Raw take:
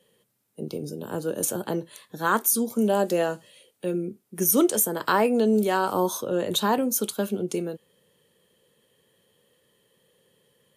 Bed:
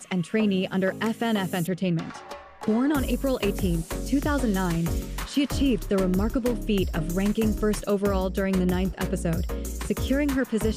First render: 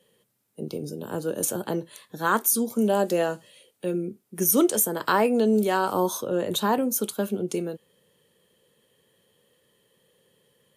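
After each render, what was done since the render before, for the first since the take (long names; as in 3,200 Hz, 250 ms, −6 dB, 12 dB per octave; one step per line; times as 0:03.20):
0:06.27–0:07.45: parametric band 4,400 Hz −3 dB 1.9 octaves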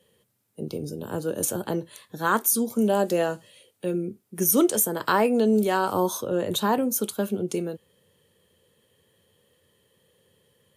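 parametric band 85 Hz +12.5 dB 0.62 octaves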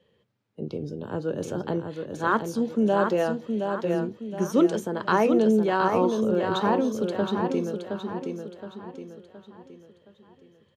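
high-frequency loss of the air 190 metres
repeating echo 719 ms, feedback 42%, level −5.5 dB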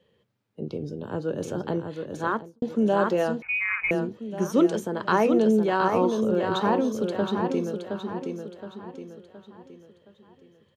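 0:02.16–0:02.62: fade out and dull
0:03.42–0:03.91: voice inversion scrambler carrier 2,700 Hz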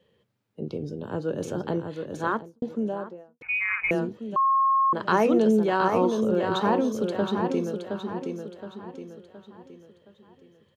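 0:02.30–0:03.41: fade out and dull
0:04.36–0:04.93: beep over 1,080 Hz −18 dBFS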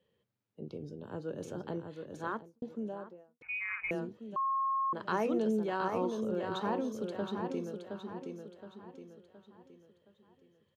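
level −10.5 dB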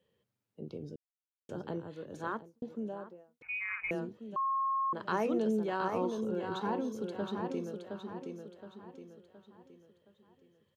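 0:00.96–0:01.49: silence
0:06.18–0:07.20: notch comb filter 610 Hz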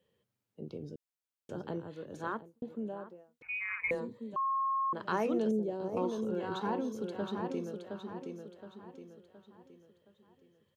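0:02.34–0:03.09: parametric band 5,600 Hz −10.5 dB 0.43 octaves
0:03.79–0:04.34: EQ curve with evenly spaced ripples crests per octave 1, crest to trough 13 dB
0:05.51–0:05.97: drawn EQ curve 570 Hz 0 dB, 1,200 Hz −23 dB, 7,000 Hz −7 dB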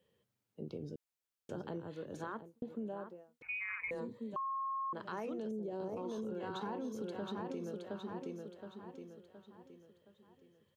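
brickwall limiter −29.5 dBFS, peak gain reduction 9.5 dB
downward compressor, threshold −37 dBFS, peak gain reduction 5.5 dB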